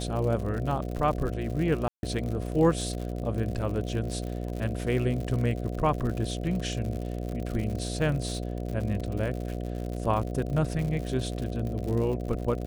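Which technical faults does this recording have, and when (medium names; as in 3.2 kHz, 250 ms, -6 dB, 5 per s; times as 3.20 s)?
buzz 60 Hz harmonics 12 -33 dBFS
crackle 89 per s -33 dBFS
1.88–2.03 s: dropout 150 ms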